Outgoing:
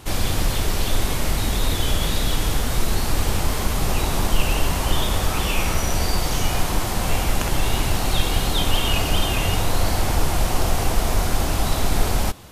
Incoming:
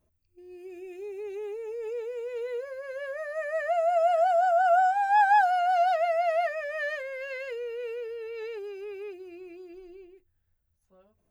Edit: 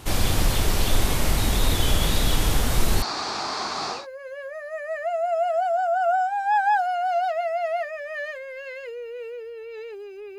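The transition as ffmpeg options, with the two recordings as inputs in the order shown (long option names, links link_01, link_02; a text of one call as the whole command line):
ffmpeg -i cue0.wav -i cue1.wav -filter_complex "[0:a]asettb=1/sr,asplit=3[link_01][link_02][link_03];[link_01]atrim=end=3.024[link_04];[link_02]atrim=start=3.02:end=4.07,asetpts=PTS-STARTPTS,afade=type=in:duration=0.004:curve=qsin,afade=type=out:start_time=1.046:duration=0.004:curve=qsin,highpass=430,equalizer=frequency=520:width_type=q:width=4:gain=-9,equalizer=frequency=750:width_type=q:width=4:gain=3,equalizer=frequency=1200:width_type=q:width=4:gain=5,equalizer=frequency=2000:width_type=q:width=4:gain=-4,equalizer=frequency=3000:width_type=q:width=4:gain=-10,equalizer=frequency=4500:width_type=q:width=4:gain=8,lowpass=frequency=5900:width=0.5412,lowpass=frequency=5900:width=1.3066[link_05];[link_03]atrim=start=4.066[link_06];[link_04][link_05]acrossfade=duration=0.004:curve1=hsin:curve2=qsin[link_07];[link_07][link_06]acrossfade=duration=0.004:curve1=qsin:curve2=hsin,apad=whole_dur=10.38,atrim=end=10.38,atrim=end=4.07,asetpts=PTS-STARTPTS[link_08];[1:a]atrim=start=2.51:end=9.02,asetpts=PTS-STARTPTS[link_09];[link_08][link_09]acrossfade=duration=0.2:curve1=tri:curve2=tri" out.wav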